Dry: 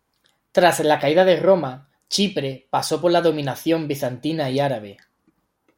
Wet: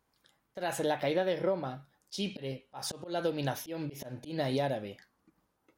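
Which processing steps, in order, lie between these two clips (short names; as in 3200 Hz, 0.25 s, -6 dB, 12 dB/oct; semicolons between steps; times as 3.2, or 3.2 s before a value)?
compressor 6:1, threshold -22 dBFS, peak gain reduction 12.5 dB; auto swell 0.161 s; gain -5 dB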